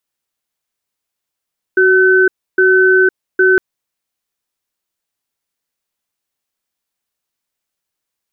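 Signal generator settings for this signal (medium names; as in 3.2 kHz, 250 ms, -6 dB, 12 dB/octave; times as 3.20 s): cadence 374 Hz, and 1.52 kHz, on 0.51 s, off 0.30 s, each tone -9.5 dBFS 1.81 s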